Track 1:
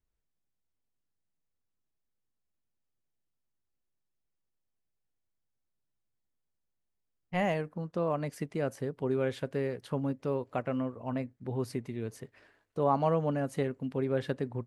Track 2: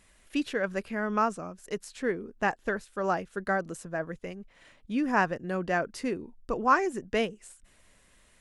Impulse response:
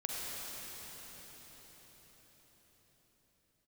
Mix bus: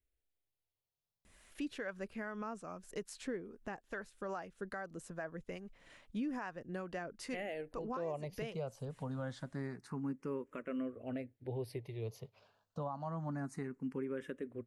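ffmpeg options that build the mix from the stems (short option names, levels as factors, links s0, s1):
-filter_complex "[0:a]asplit=2[s0][s1];[s1]afreqshift=0.27[s2];[s0][s2]amix=inputs=2:normalize=1,volume=0.891,asplit=2[s3][s4];[1:a]acompressor=threshold=0.0141:ratio=1.5,acrossover=split=550[s5][s6];[s5]aeval=exprs='val(0)*(1-0.5/2+0.5/2*cos(2*PI*2.4*n/s))':c=same[s7];[s6]aeval=exprs='val(0)*(1-0.5/2-0.5/2*cos(2*PI*2.4*n/s))':c=same[s8];[s7][s8]amix=inputs=2:normalize=0,adelay=1250,volume=0.944[s9];[s4]apad=whole_len=425820[s10];[s9][s10]sidechaincompress=threshold=0.01:ratio=8:attack=9.7:release=298[s11];[s3][s11]amix=inputs=2:normalize=0,alimiter=level_in=2.24:limit=0.0631:level=0:latency=1:release=451,volume=0.447"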